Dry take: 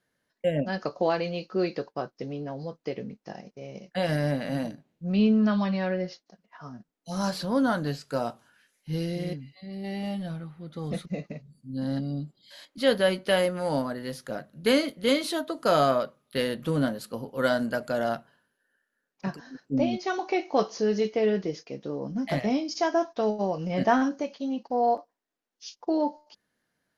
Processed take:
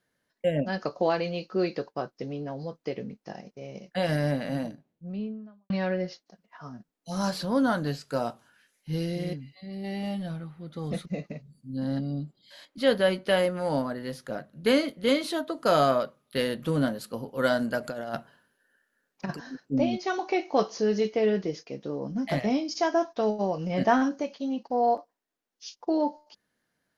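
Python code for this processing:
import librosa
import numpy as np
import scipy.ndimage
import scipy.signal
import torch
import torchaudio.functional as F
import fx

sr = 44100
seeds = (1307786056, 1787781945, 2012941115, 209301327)

y = fx.studio_fade_out(x, sr, start_s=4.29, length_s=1.41)
y = fx.high_shelf(y, sr, hz=4100.0, db=-4.5, at=(11.76, 15.66))
y = fx.over_compress(y, sr, threshold_db=-31.0, ratio=-0.5, at=(17.83, 19.54), fade=0.02)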